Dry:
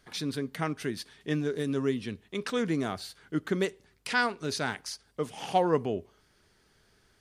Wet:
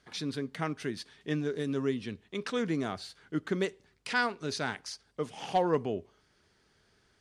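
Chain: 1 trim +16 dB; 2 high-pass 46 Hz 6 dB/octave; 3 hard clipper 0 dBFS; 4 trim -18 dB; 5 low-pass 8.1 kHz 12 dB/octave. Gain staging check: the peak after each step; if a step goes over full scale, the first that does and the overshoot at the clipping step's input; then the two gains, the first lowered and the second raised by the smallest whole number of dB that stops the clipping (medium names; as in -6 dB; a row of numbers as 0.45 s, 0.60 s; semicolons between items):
+3.5 dBFS, +4.0 dBFS, 0.0 dBFS, -18.0 dBFS, -17.5 dBFS; step 1, 4.0 dB; step 1 +12 dB, step 4 -14 dB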